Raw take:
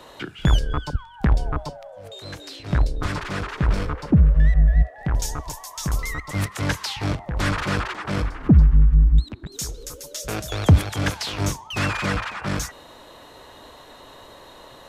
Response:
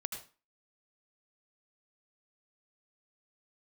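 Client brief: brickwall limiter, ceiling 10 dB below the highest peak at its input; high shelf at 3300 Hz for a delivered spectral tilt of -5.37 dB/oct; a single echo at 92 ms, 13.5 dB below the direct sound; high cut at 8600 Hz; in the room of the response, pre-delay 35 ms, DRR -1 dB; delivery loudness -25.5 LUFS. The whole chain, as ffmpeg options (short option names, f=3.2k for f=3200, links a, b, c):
-filter_complex "[0:a]lowpass=8.6k,highshelf=f=3.3k:g=-7,alimiter=limit=-15.5dB:level=0:latency=1,aecho=1:1:92:0.211,asplit=2[a][b];[1:a]atrim=start_sample=2205,adelay=35[c];[b][c]afir=irnorm=-1:irlink=0,volume=1dB[d];[a][d]amix=inputs=2:normalize=0,volume=-1dB"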